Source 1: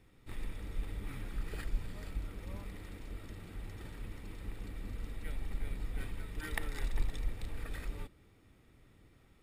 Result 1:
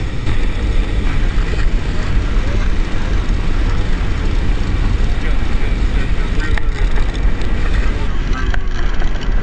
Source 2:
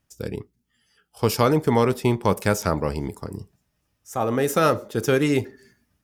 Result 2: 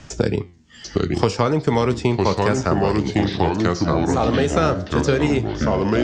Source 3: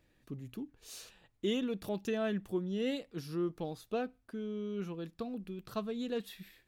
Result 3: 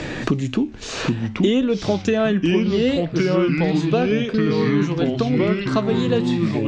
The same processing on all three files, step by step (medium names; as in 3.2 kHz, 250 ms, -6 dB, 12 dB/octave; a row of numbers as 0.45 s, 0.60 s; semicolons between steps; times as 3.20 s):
steep low-pass 7.6 kHz 48 dB/octave; flange 0.58 Hz, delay 6.3 ms, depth 8.6 ms, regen +82%; ever faster or slower copies 721 ms, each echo -3 st, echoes 3; three bands compressed up and down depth 100%; normalise loudness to -20 LUFS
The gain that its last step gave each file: +26.5 dB, +5.5 dB, +19.5 dB